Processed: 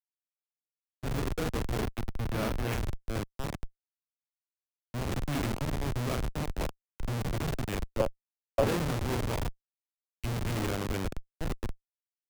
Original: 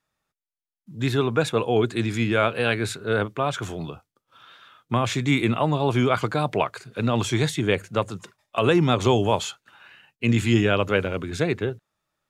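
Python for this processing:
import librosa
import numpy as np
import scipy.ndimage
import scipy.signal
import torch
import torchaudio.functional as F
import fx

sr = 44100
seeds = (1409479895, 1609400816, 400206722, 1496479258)

y = fx.high_shelf(x, sr, hz=2200.0, db=6.5)
y = fx.room_flutter(y, sr, wall_m=7.1, rt60_s=0.53)
y = fx.schmitt(y, sr, flips_db=-15.5)
y = fx.resample_bad(y, sr, factor=3, down='filtered', up='hold', at=(1.81, 2.73))
y = fx.peak_eq(y, sr, hz=560.0, db=14.5, octaves=0.47, at=(7.98, 8.65))
y = fx.band_widen(y, sr, depth_pct=70)
y = y * librosa.db_to_amplitude(-8.0)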